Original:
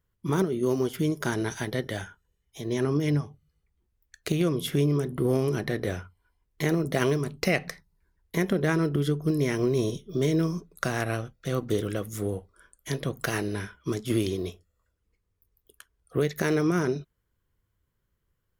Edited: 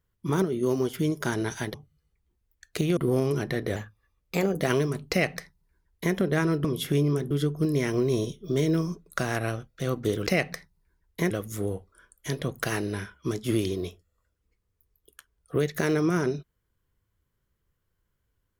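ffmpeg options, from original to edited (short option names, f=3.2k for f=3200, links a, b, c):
-filter_complex "[0:a]asplit=9[a][b][c][d][e][f][g][h][i];[a]atrim=end=1.742[j];[b]atrim=start=3.248:end=4.482[k];[c]atrim=start=5.138:end=5.934[l];[d]atrim=start=5.93:end=6.92,asetpts=PTS-STARTPTS,asetrate=51597,aresample=44100,atrim=end_sample=37315,asetpts=PTS-STARTPTS[m];[e]atrim=start=6.916:end=8.962[n];[f]atrim=start=4.478:end=5.142[o];[g]atrim=start=8.958:end=11.922[p];[h]atrim=start=7.418:end=8.462[q];[i]atrim=start=11.918[r];[j][k]acrossfade=d=0.004:c1=hsin:c2=hsin[s];[s][l]acrossfade=d=0.004:c1=hsin:c2=hsin[t];[t][m]acrossfade=d=0.004:c1=hsin:c2=hsin[u];[u][n]acrossfade=d=0.004:c1=hsin:c2=hsin[v];[v][o]acrossfade=d=0.004:c1=hsin:c2=hsin[w];[w][p]acrossfade=d=0.004:c1=hsin:c2=hsin[x];[x][q]acrossfade=d=0.004:c1=hsin:c2=hsin[y];[y][r]acrossfade=d=0.004:c1=hsin:c2=hsin"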